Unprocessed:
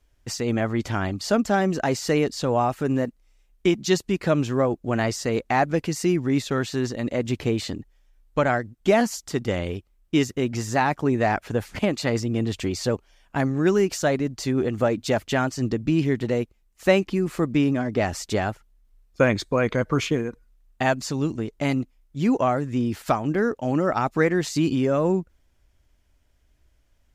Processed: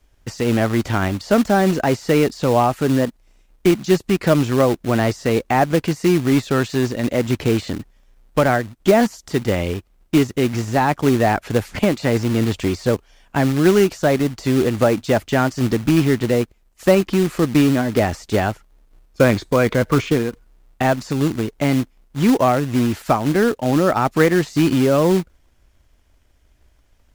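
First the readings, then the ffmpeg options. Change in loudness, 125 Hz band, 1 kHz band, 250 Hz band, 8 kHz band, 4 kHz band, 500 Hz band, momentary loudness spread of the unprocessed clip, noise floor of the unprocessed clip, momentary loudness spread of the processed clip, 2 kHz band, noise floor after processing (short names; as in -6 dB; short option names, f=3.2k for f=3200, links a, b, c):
+5.5 dB, +6.0 dB, +5.0 dB, +6.0 dB, +2.5 dB, +4.0 dB, +5.5 dB, 6 LU, -63 dBFS, 6 LU, +4.0 dB, -57 dBFS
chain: -filter_complex "[0:a]deesser=0.95,acrossover=split=580|2500[a][b][c];[a]acrusher=bits=3:mode=log:mix=0:aa=0.000001[d];[d][b][c]amix=inputs=3:normalize=0,volume=6dB"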